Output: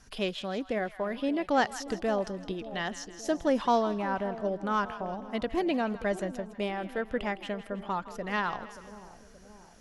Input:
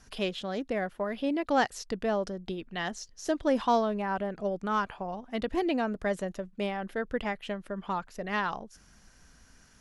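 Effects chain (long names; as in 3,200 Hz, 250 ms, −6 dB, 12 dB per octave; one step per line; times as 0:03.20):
echo with a time of its own for lows and highs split 820 Hz, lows 577 ms, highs 161 ms, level −14 dB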